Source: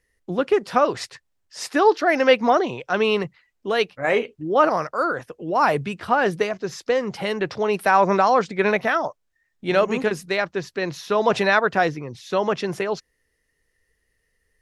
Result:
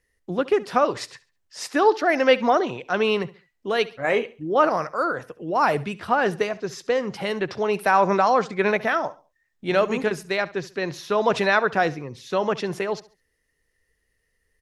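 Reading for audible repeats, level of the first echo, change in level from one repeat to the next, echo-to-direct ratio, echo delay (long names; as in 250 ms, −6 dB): 2, −19.0 dB, −10.0 dB, −18.5 dB, 69 ms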